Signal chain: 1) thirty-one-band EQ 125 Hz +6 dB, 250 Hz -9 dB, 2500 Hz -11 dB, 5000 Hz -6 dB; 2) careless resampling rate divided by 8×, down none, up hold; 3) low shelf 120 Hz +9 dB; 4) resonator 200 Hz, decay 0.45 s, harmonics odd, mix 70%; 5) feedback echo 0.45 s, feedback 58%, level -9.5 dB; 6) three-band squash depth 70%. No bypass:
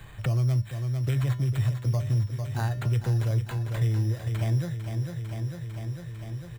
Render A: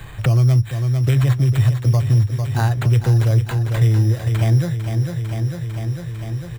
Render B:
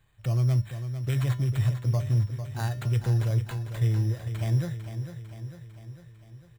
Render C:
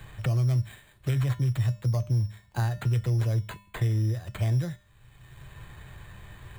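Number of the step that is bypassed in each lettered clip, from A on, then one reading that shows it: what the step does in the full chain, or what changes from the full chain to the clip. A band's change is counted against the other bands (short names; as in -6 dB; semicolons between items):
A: 4, loudness change +10.0 LU; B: 6, crest factor change +1.5 dB; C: 5, momentary loudness spread change +12 LU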